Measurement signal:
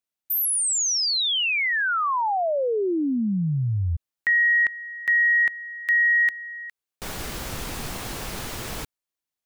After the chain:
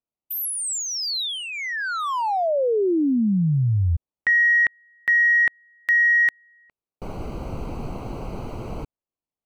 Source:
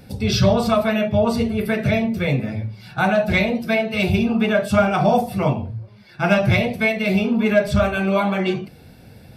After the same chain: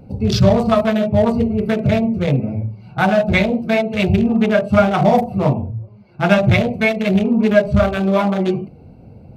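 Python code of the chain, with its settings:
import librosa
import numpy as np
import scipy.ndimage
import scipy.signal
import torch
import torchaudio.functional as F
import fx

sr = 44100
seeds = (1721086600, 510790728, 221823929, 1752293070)

y = fx.wiener(x, sr, points=25)
y = F.gain(torch.from_numpy(y), 4.0).numpy()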